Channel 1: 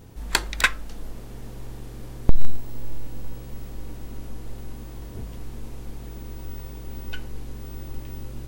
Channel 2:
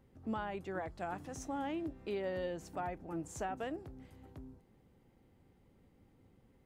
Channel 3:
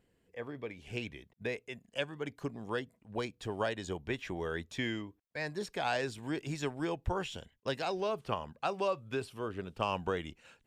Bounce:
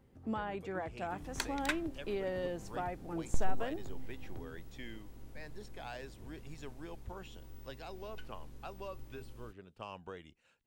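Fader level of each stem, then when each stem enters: −16.0, +1.0, −13.0 decibels; 1.05, 0.00, 0.00 seconds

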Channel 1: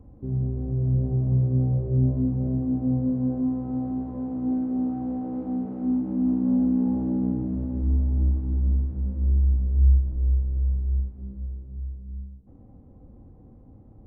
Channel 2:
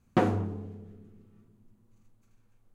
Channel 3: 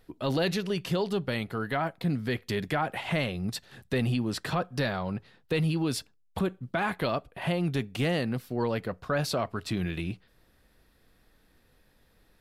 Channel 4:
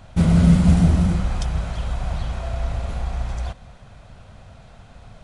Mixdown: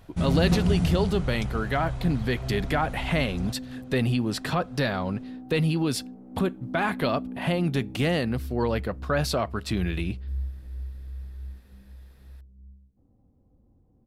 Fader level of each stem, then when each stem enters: −13.5, −8.5, +3.0, −9.5 decibels; 0.50, 0.35, 0.00, 0.00 seconds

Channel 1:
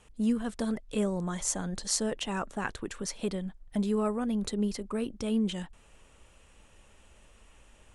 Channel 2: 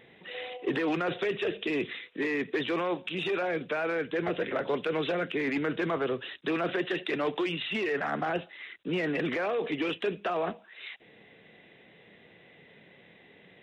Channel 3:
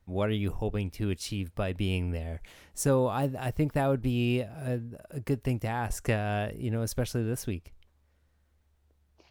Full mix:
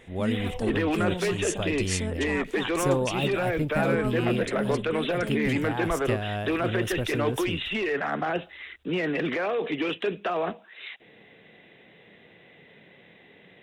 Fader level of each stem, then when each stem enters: −2.5, +2.5, −1.0 decibels; 0.00, 0.00, 0.00 seconds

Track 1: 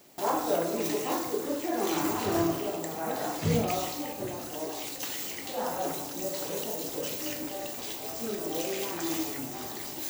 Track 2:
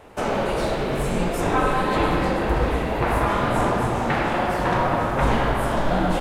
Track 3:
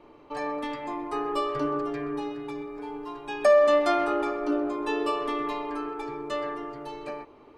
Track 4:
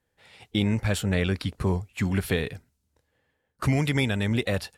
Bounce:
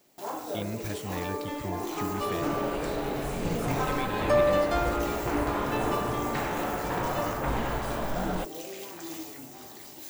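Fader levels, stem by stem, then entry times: −7.5, −9.5, −4.5, −11.5 decibels; 0.00, 2.25, 0.85, 0.00 seconds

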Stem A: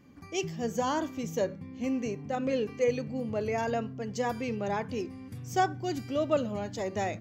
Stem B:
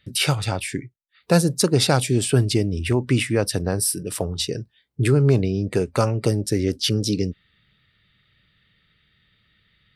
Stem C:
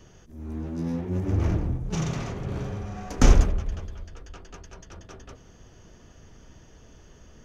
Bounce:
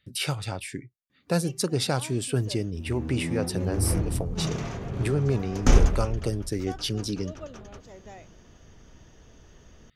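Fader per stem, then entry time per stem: −14.5, −8.0, −1.5 decibels; 1.10, 0.00, 2.45 seconds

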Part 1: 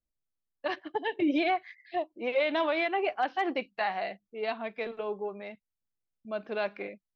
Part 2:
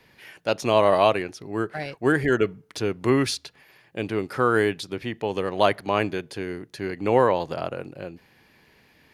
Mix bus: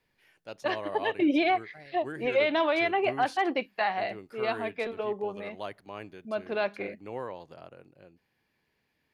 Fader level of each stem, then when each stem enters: +2.5, −18.5 decibels; 0.00, 0.00 seconds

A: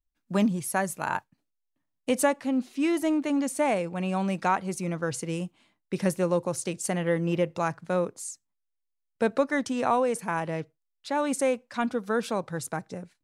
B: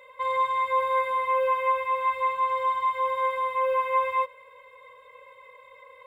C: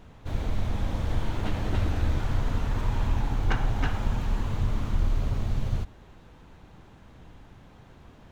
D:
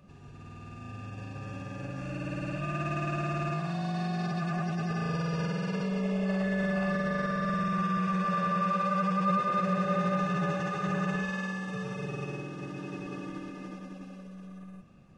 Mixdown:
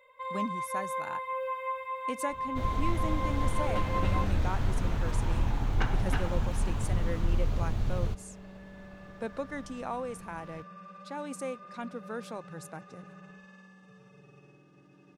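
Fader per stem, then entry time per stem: −11.5, −10.0, −2.5, −20.0 decibels; 0.00, 0.00, 2.30, 2.15 seconds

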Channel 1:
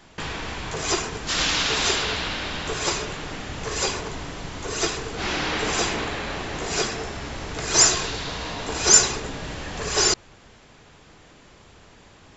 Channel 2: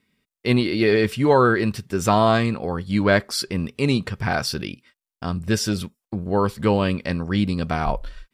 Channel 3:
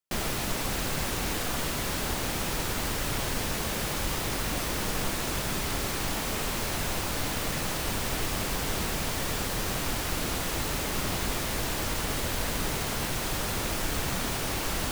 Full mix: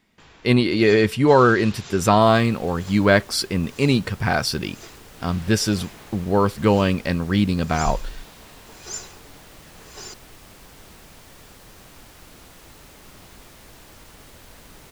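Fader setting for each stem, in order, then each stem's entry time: −19.0, +2.0, −16.0 decibels; 0.00, 0.00, 2.10 seconds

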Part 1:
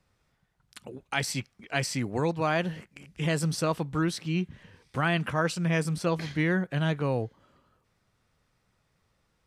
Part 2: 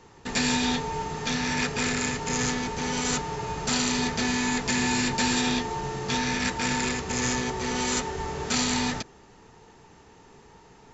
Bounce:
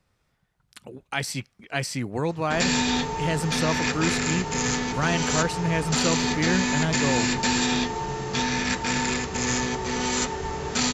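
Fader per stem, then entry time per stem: +1.0, +1.5 decibels; 0.00, 2.25 seconds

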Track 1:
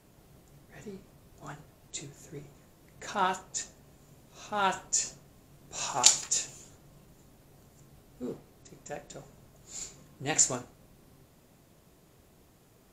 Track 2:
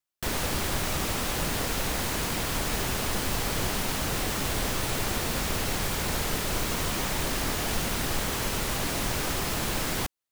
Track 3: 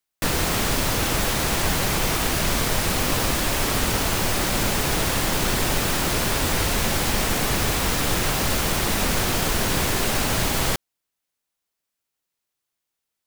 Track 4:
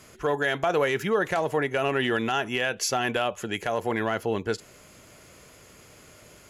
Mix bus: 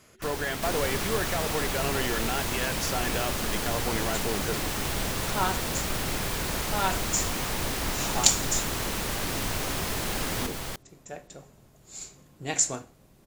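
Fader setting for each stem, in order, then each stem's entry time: 0.0, −2.5, −13.0, −6.0 decibels; 2.20, 0.40, 0.00, 0.00 seconds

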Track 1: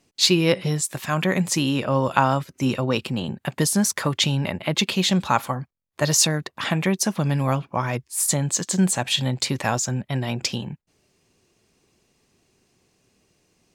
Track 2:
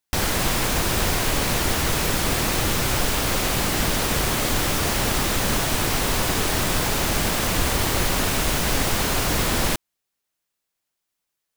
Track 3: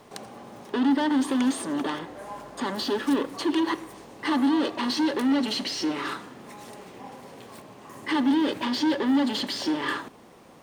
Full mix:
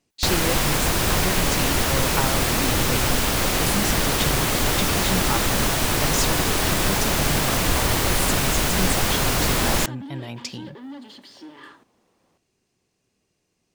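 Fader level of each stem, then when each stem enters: −8.0, +1.0, −15.5 decibels; 0.00, 0.10, 1.75 seconds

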